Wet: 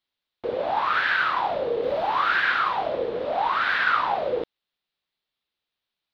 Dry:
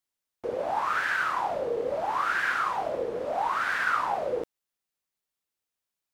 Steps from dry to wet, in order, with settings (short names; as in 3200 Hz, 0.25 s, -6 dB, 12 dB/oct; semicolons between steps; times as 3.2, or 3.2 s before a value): 1.83–2.4 zero-crossing step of -42.5 dBFS; resonant high shelf 5400 Hz -13 dB, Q 3; gain +3.5 dB